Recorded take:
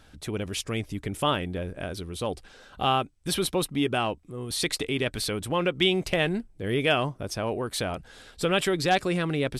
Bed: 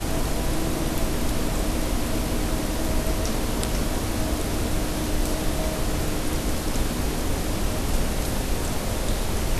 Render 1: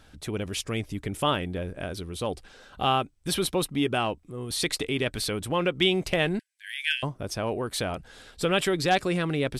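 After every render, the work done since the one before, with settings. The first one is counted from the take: 6.39–7.03 s: brick-wall FIR high-pass 1.5 kHz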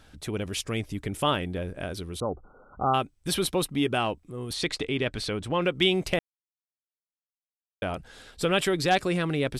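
2.20–2.94 s: brick-wall FIR low-pass 1.5 kHz; 4.53–5.62 s: distance through air 70 m; 6.19–7.82 s: mute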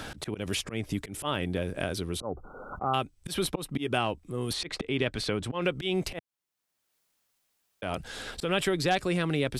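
slow attack 203 ms; three bands compressed up and down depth 70%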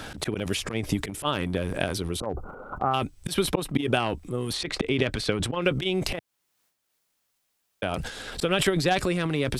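transient shaper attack +8 dB, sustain +12 dB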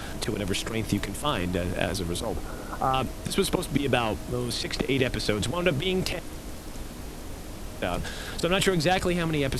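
add bed -13 dB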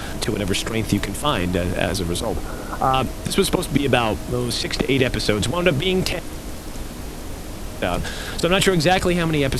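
trim +6.5 dB; peak limiter -1 dBFS, peak gain reduction 1.5 dB

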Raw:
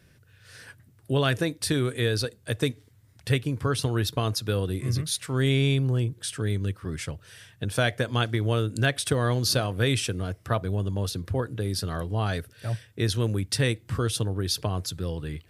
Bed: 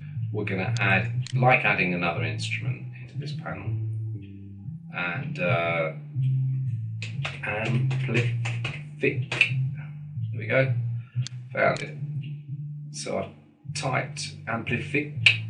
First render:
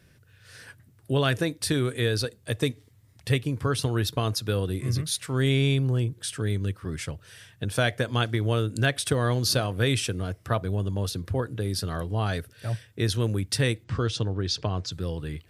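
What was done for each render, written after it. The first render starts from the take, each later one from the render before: 2.40–3.53 s: band-stop 1.5 kHz, Q 9; 13.84–14.92 s: low-pass 6.5 kHz 24 dB/octave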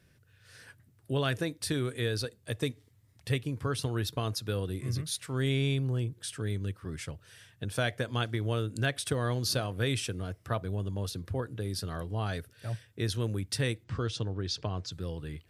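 trim -6 dB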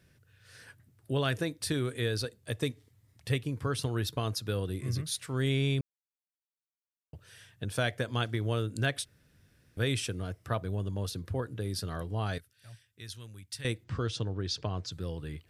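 5.81–7.13 s: mute; 9.05–9.77 s: room tone; 12.38–13.65 s: amplifier tone stack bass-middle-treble 5-5-5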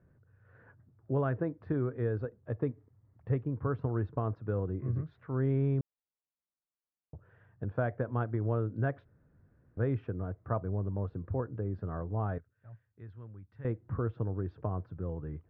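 low-pass 1.3 kHz 24 dB/octave

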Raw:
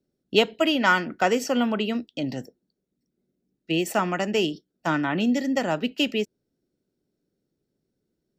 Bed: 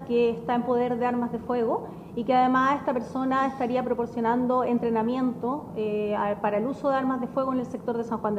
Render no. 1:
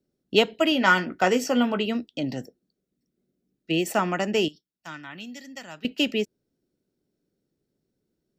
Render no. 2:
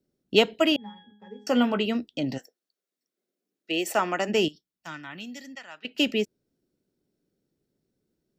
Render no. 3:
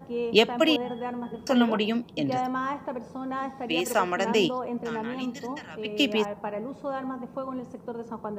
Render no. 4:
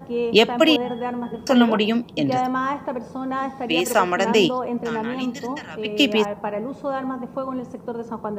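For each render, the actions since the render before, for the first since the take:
0.70–1.86 s: doubling 16 ms -9 dB; 2.38–3.83 s: Butterworth band-stop 900 Hz, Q 7; 4.48–5.85 s: amplifier tone stack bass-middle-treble 5-5-5
0.76–1.47 s: pitch-class resonator G#, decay 0.55 s; 2.37–4.28 s: high-pass 1.1 kHz -> 260 Hz; 5.55–5.95 s: band-pass filter 1.7 kHz, Q 0.63
add bed -7.5 dB
trim +6 dB; peak limiter -3 dBFS, peak gain reduction 2.5 dB

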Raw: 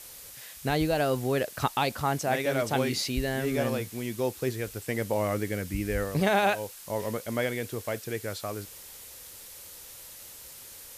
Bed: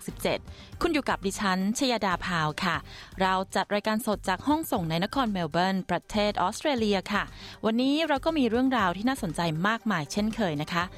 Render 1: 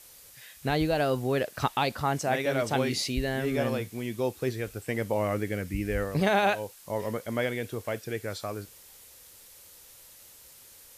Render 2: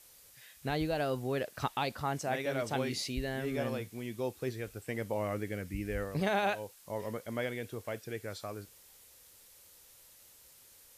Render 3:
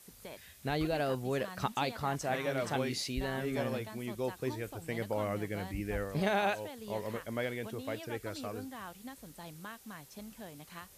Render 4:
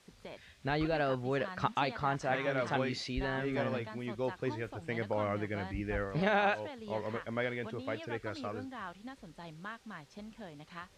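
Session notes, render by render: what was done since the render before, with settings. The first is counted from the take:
noise print and reduce 6 dB
trim -6.5 dB
add bed -20.5 dB
low-pass 4.4 kHz 12 dB/octave; dynamic bell 1.4 kHz, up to +4 dB, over -50 dBFS, Q 1.2

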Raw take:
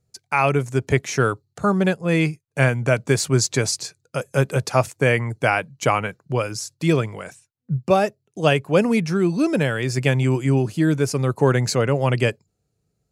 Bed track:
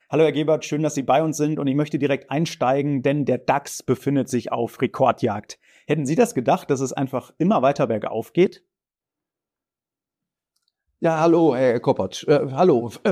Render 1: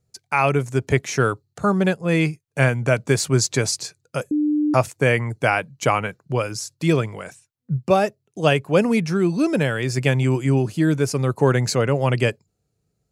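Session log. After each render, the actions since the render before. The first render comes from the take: 4.31–4.74 s: bleep 299 Hz -16.5 dBFS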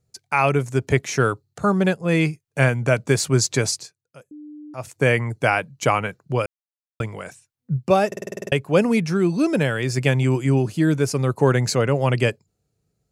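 3.70–4.99 s: dip -19.5 dB, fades 0.22 s; 6.46–7.00 s: mute; 8.07 s: stutter in place 0.05 s, 9 plays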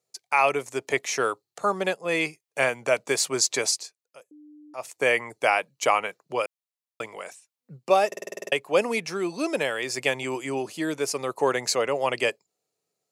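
high-pass 520 Hz 12 dB/octave; peaking EQ 1.5 kHz -7 dB 0.29 oct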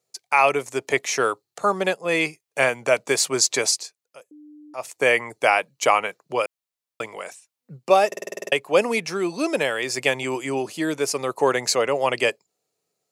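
trim +3.5 dB

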